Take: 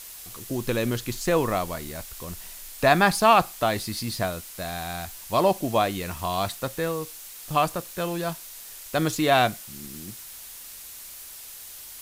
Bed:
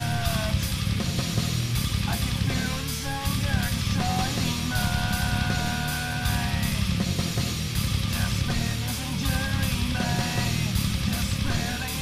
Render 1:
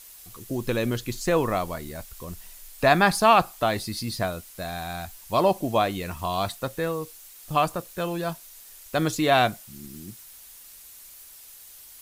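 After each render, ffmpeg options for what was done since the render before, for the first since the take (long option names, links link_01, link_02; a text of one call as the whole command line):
ffmpeg -i in.wav -af "afftdn=noise_reduction=7:noise_floor=-42" out.wav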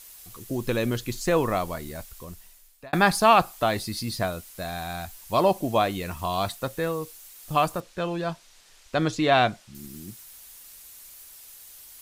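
ffmpeg -i in.wav -filter_complex "[0:a]asettb=1/sr,asplit=3[link_01][link_02][link_03];[link_01]atrim=end=7.804[link_04];[link_02]atrim=start=7.8:end=9.75,asetpts=PTS-STARTPTS,afade=type=in:duration=0.004:curve=qsin,afade=type=out:start_time=1.946:duration=0.004:curve=qsin,lowpass=5400[link_05];[link_03]atrim=start=9.746[link_06];[link_04][link_05]acrossfade=duration=0.004:curve1=hsin:curve2=qsin[link_07];[link_07][link_06]acrossfade=duration=0.004:curve1=qsin:curve2=hsin,asplit=2[link_08][link_09];[link_08]atrim=end=2.93,asetpts=PTS-STARTPTS,afade=type=out:start_time=1.97:duration=0.96[link_10];[link_09]atrim=start=2.93,asetpts=PTS-STARTPTS,afade=type=in:duration=0.004:curve=hsin[link_11];[link_10][link_11]concat=n=2:v=0:a=1" out.wav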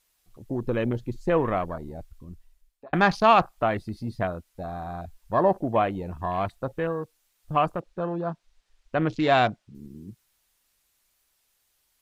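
ffmpeg -i in.wav -af "afwtdn=0.02,highshelf=frequency=5600:gain=-10.5" out.wav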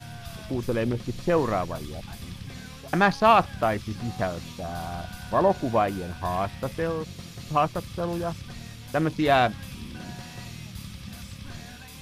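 ffmpeg -i in.wav -i bed.wav -filter_complex "[1:a]volume=-14dB[link_01];[0:a][link_01]amix=inputs=2:normalize=0" out.wav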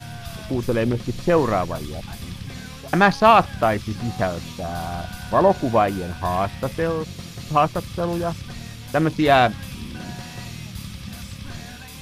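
ffmpeg -i in.wav -af "volume=5dB,alimiter=limit=-2dB:level=0:latency=1" out.wav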